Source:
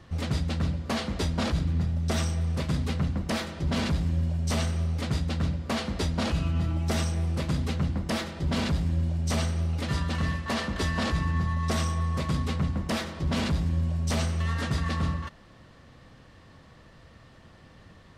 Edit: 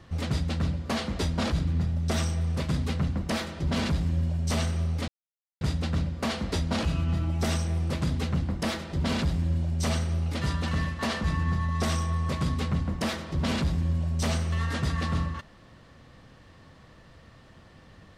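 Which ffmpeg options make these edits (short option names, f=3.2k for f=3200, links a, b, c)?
-filter_complex "[0:a]asplit=3[a][b][c];[a]atrim=end=5.08,asetpts=PTS-STARTPTS,afade=t=out:st=5.076:d=0.004:c=hsin,apad=pad_dur=0.53[d];[b]atrim=start=5.08:end=10.712,asetpts=PTS-STARTPTS,afade=t=in:d=0.004:c=hsin[e];[c]atrim=start=11.118[f];[d][e]concat=n=2:v=0:a=1[g];[g][f]acrossfade=d=0.004:c1=hsin:c2=hsin"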